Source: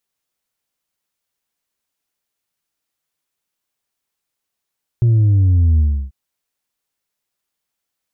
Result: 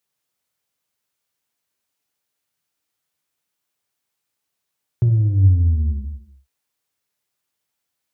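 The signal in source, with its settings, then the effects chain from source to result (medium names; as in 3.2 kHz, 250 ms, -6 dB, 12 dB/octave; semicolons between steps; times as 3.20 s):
sub drop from 120 Hz, over 1.09 s, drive 2.5 dB, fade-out 0.32 s, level -10 dB
high-pass 54 Hz 24 dB/octave; compression, threshold -15 dBFS; gated-style reverb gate 370 ms falling, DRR 6.5 dB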